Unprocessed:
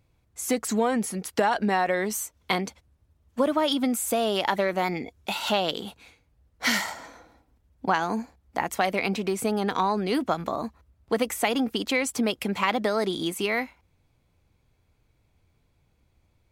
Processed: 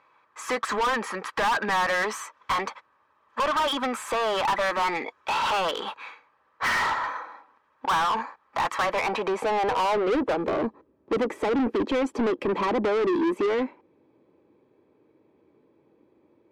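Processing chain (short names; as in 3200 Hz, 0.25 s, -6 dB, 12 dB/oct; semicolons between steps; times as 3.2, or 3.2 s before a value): band-pass sweep 1200 Hz -> 340 Hz, 8.75–10.73; notch comb 710 Hz; overdrive pedal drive 32 dB, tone 3200 Hz, clips at -16.5 dBFS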